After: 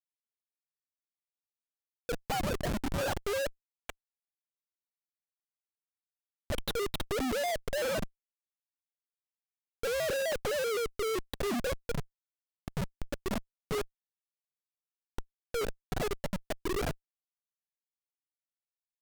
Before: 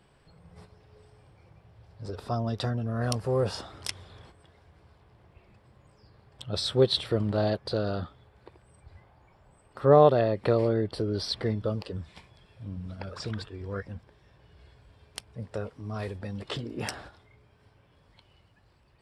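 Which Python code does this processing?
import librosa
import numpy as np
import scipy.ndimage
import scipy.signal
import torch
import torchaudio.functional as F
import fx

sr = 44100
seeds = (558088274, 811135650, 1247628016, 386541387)

y = fx.sine_speech(x, sr)
y = fx.schmitt(y, sr, flips_db=-35.0)
y = fx.vibrato_shape(y, sr, shape='square', rate_hz=3.9, depth_cents=160.0)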